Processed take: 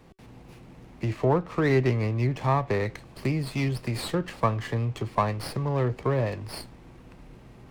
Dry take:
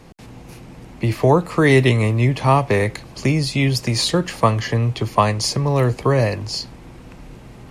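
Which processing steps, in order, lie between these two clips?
tuned comb filter 380 Hz, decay 0.18 s, harmonics odd, mix 40%
treble cut that deepens with the level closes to 2,100 Hz, closed at −15.5 dBFS
windowed peak hold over 5 samples
level −4.5 dB

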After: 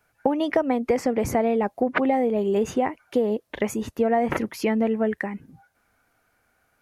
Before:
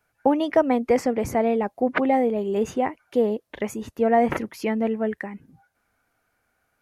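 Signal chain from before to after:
downward compressor 6 to 1, threshold −22 dBFS, peak gain reduction 9 dB
level +4 dB

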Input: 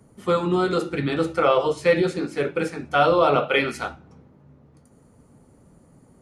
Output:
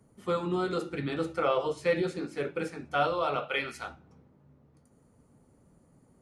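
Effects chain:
0:03.07–0:03.88: parametric band 260 Hz −7 dB 2.4 octaves
level −8.5 dB

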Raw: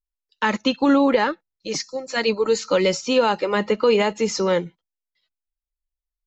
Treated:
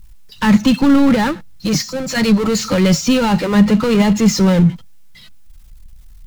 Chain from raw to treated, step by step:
power curve on the samples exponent 0.5
low shelf with overshoot 270 Hz +12 dB, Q 1.5
level −2.5 dB

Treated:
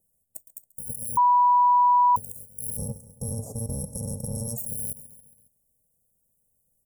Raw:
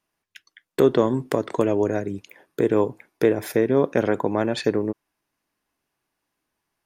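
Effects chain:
samples in bit-reversed order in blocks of 128 samples
0:02.77–0:04.58: low-pass filter 5,200 Hz 12 dB per octave
compressor whose output falls as the input rises −30 dBFS, ratio −1
inverse Chebyshev band-stop filter 1,700–3,500 Hz, stop band 70 dB
repeating echo 137 ms, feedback 56%, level −20 dB
brickwall limiter −26 dBFS, peak gain reduction 11.5 dB
0:01.17–0:02.16: beep over 980 Hz −18.5 dBFS
level +3.5 dB

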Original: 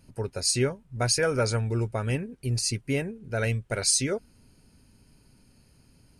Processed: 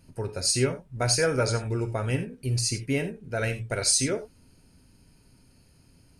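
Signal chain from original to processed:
reverb whose tail is shaped and stops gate 110 ms flat, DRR 8 dB

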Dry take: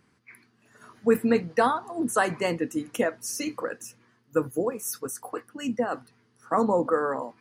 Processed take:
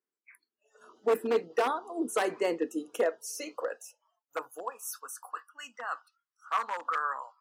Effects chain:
wave folding −16.5 dBFS
high-pass filter sweep 390 Hz → 1,200 Hz, 0:02.77–0:05.31
noise reduction from a noise print of the clip's start 25 dB
level −6.5 dB

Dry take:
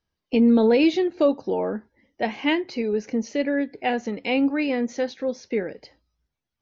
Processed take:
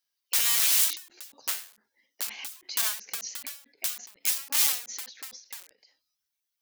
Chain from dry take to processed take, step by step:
wrap-around overflow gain 23 dB
first difference
every ending faded ahead of time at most 140 dB per second
level +7.5 dB

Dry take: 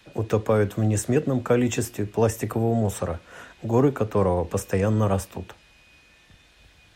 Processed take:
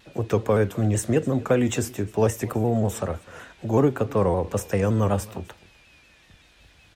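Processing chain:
single-tap delay 255 ms −22 dB
pitch modulation by a square or saw wave saw down 5.3 Hz, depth 100 cents

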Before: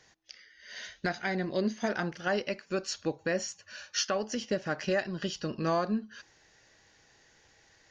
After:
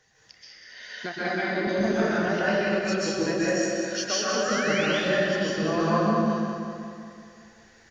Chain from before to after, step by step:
spectral magnitudes quantised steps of 15 dB
0:00.73–0:01.67: Chebyshev band-pass filter 240–4,600 Hz, order 2
0:04.30–0:04.86: sound drawn into the spectrogram rise 1,200–3,700 Hz −37 dBFS
on a send: repeating echo 193 ms, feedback 56%, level −7 dB
on the sum: dense smooth reverb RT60 1.9 s, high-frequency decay 0.5×, pre-delay 115 ms, DRR −8.5 dB
level −2 dB

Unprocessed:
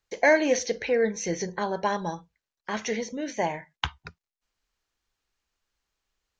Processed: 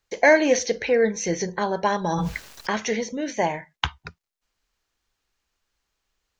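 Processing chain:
0:02.04–0:02.75: envelope flattener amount 100%
level +4 dB

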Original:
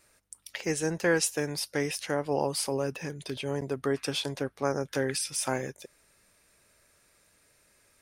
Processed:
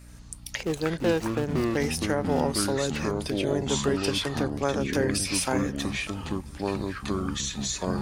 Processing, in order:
0:00.63–0:01.77: running median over 25 samples
in parallel at +1.5 dB: downward compressor, threshold −39 dBFS, peak gain reduction 16 dB
on the sum: mains hum 60 Hz, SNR 17 dB
on a send: feedback echo with a high-pass in the loop 654 ms, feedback 42%, level −22 dB
on the sum: delay with pitch and tempo change per echo 80 ms, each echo −6 semitones, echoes 2

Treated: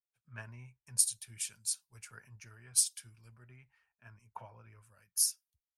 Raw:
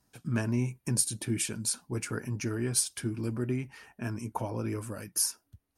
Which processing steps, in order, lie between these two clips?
guitar amp tone stack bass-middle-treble 10-0-10
multiband upward and downward expander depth 100%
level −7.5 dB

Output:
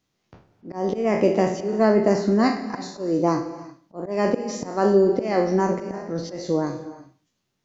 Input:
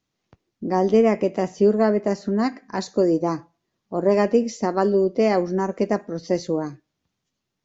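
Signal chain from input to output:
peak hold with a decay on every bin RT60 0.41 s
volume swells 275 ms
reverb whose tail is shaped and stops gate 380 ms flat, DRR 11 dB
level +2 dB

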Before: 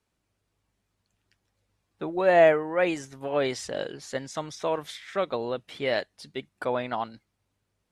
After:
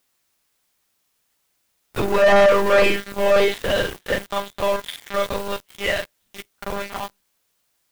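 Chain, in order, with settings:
every overlapping window played backwards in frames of 82 ms
source passing by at 0:02.83, 6 m/s, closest 4.4 metres
one-pitch LPC vocoder at 8 kHz 200 Hz
tilt shelving filter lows −4.5 dB, about 1,200 Hz
in parallel at −5.5 dB: hard clipping −25.5 dBFS, distortion −7 dB
on the sum: bit-depth reduction 10 bits, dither triangular
flutter between parallel walls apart 8.9 metres, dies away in 0.2 s
leveller curve on the samples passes 5
slew-rate limiting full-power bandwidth 350 Hz

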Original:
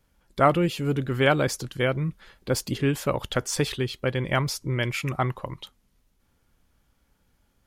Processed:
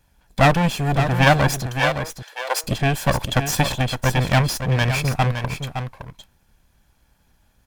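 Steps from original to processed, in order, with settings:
lower of the sound and its delayed copy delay 1.2 ms
0:01.66–0:02.64: Butterworth high-pass 460 Hz 36 dB per octave
single-tap delay 564 ms −8.5 dB
level +7 dB

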